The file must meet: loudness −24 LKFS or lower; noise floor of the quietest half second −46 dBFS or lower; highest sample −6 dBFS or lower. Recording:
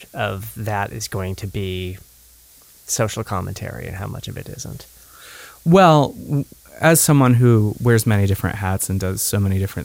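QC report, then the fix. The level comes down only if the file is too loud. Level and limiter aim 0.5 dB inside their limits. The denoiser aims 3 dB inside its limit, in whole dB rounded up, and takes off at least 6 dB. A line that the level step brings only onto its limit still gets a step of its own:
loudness −18.5 LKFS: out of spec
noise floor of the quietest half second −49 dBFS: in spec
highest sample −1.5 dBFS: out of spec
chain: level −6 dB

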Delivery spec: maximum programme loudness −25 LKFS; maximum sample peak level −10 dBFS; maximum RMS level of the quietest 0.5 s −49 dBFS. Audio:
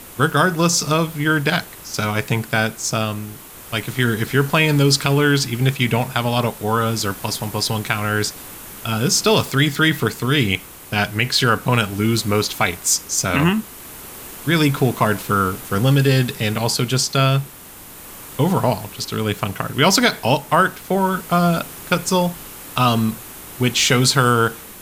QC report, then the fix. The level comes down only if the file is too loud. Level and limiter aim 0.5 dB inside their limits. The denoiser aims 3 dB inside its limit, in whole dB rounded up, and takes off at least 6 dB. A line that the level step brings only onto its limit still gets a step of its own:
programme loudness −18.5 LKFS: out of spec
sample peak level −1.5 dBFS: out of spec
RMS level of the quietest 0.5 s −39 dBFS: out of spec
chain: broadband denoise 6 dB, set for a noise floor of −39 dBFS
level −7 dB
brickwall limiter −10.5 dBFS

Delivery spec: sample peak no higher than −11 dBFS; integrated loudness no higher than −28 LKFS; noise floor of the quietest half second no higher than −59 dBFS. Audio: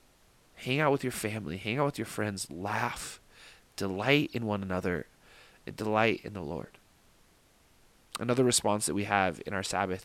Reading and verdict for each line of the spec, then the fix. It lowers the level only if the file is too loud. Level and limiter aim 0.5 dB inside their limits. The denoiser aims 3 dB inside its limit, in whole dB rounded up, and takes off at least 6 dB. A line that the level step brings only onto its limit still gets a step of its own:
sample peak −9.0 dBFS: out of spec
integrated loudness −30.5 LKFS: in spec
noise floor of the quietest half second −63 dBFS: in spec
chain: brickwall limiter −11.5 dBFS

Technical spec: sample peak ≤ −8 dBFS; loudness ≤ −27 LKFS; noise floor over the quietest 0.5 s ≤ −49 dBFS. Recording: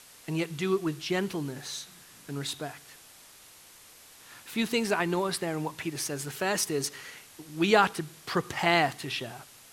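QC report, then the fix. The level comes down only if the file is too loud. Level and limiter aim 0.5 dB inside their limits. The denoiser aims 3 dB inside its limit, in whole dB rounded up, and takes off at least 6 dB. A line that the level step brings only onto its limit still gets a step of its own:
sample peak −7.0 dBFS: out of spec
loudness −29.5 LKFS: in spec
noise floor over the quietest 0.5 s −53 dBFS: in spec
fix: brickwall limiter −8.5 dBFS

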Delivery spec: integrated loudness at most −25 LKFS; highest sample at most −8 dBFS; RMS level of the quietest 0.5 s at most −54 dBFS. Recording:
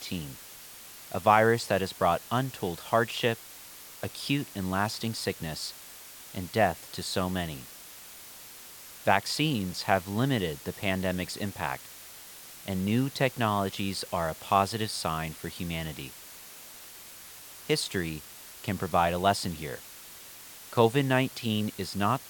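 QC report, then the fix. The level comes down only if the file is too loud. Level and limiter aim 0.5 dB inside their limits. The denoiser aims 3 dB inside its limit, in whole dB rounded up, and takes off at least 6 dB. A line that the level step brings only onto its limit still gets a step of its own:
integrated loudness −29.0 LKFS: in spec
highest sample −6.5 dBFS: out of spec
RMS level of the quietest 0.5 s −47 dBFS: out of spec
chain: broadband denoise 10 dB, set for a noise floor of −47 dBFS
brickwall limiter −8.5 dBFS

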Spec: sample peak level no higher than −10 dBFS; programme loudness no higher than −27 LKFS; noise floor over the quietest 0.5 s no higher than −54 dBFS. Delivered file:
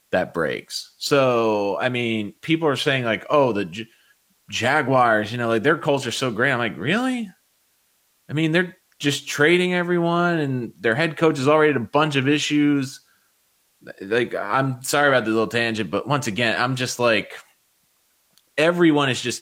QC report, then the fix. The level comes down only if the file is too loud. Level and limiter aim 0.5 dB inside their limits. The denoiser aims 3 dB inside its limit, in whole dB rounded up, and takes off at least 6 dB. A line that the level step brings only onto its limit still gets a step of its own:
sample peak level −5.5 dBFS: out of spec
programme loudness −20.5 LKFS: out of spec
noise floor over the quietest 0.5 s −65 dBFS: in spec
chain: level −7 dB

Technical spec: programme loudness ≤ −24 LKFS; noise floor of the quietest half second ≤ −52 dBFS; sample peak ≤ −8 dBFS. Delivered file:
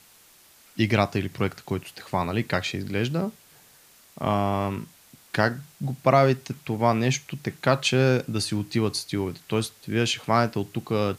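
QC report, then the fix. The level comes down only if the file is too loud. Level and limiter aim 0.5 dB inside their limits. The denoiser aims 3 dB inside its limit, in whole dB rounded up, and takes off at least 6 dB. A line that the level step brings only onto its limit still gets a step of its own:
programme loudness −25.5 LKFS: in spec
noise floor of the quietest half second −55 dBFS: in spec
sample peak −5.5 dBFS: out of spec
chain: brickwall limiter −8.5 dBFS

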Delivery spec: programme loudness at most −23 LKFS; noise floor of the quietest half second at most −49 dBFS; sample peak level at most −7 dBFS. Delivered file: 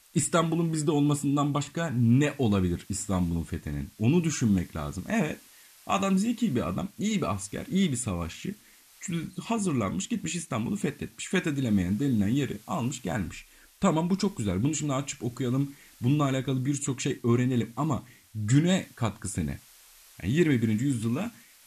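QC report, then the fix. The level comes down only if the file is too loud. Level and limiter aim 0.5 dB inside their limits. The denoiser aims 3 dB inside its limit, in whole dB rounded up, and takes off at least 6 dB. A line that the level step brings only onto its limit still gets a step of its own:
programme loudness −28.0 LKFS: in spec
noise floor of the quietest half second −55 dBFS: in spec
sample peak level −10.5 dBFS: in spec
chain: no processing needed

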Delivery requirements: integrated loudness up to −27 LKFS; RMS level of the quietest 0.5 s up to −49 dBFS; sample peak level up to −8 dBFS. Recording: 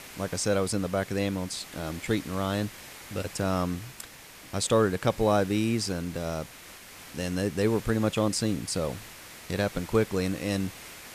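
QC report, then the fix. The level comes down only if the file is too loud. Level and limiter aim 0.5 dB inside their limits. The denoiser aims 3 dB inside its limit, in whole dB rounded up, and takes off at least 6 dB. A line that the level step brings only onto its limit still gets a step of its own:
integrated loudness −29.0 LKFS: in spec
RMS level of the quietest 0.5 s −48 dBFS: out of spec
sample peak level −10.0 dBFS: in spec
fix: broadband denoise 6 dB, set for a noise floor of −48 dBFS

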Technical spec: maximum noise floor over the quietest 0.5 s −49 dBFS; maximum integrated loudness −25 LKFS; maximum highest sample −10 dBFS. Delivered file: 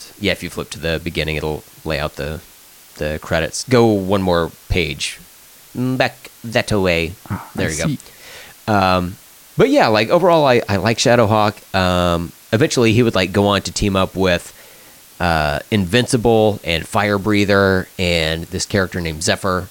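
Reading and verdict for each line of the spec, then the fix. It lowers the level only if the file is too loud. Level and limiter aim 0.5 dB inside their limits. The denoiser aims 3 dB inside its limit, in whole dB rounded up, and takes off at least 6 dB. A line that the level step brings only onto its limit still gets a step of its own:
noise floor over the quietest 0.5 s −44 dBFS: out of spec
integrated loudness −17.0 LKFS: out of spec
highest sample −2.0 dBFS: out of spec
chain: level −8.5 dB

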